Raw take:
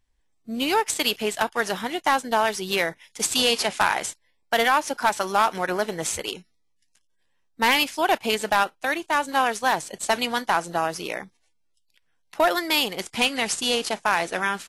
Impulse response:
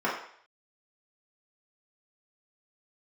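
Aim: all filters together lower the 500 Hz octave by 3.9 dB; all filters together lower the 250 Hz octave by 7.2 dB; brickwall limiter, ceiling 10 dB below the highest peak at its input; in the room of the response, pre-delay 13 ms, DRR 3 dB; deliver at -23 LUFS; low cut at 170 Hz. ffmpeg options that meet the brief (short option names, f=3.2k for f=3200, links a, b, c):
-filter_complex "[0:a]highpass=170,equalizer=f=250:t=o:g=-7,equalizer=f=500:t=o:g=-3.5,alimiter=limit=-18dB:level=0:latency=1,asplit=2[a][b];[1:a]atrim=start_sample=2205,adelay=13[c];[b][c]afir=irnorm=-1:irlink=0,volume=-15.5dB[d];[a][d]amix=inputs=2:normalize=0,volume=5.5dB"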